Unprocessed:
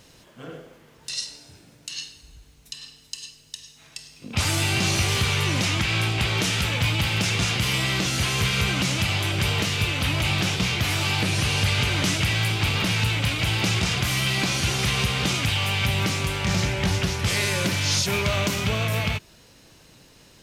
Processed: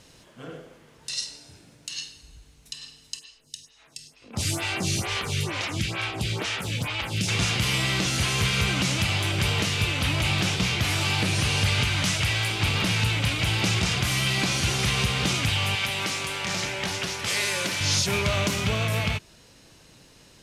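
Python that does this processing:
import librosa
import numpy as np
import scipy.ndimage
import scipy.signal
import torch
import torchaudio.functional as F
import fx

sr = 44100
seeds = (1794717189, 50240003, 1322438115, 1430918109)

y = fx.stagger_phaser(x, sr, hz=2.2, at=(3.18, 7.27), fade=0.02)
y = fx.peak_eq(y, sr, hz=fx.line((11.83, 550.0), (12.59, 120.0)), db=-11.5, octaves=0.77, at=(11.83, 12.59), fade=0.02)
y = fx.highpass(y, sr, hz=480.0, slope=6, at=(15.75, 17.81))
y = scipy.signal.sosfilt(scipy.signal.cheby1(2, 1.0, 11000.0, 'lowpass', fs=sr, output='sos'), y)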